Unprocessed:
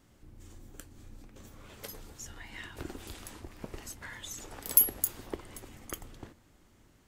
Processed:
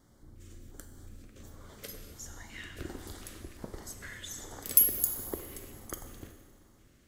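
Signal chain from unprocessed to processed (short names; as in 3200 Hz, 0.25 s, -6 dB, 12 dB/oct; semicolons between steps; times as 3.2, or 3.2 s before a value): LFO notch square 1.4 Hz 880–2600 Hz; Schroeder reverb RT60 1.8 s, combs from 31 ms, DRR 7 dB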